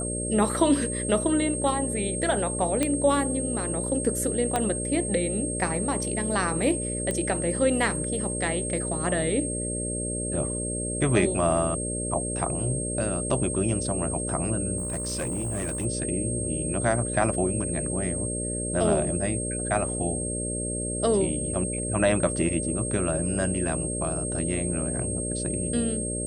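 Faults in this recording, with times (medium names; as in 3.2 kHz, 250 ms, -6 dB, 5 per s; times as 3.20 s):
buzz 60 Hz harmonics 10 -32 dBFS
whine 8.5 kHz -31 dBFS
2.83 s: pop -10 dBFS
4.56 s: pop -11 dBFS
7.11 s: pop -16 dBFS
14.77–15.86 s: clipped -25.5 dBFS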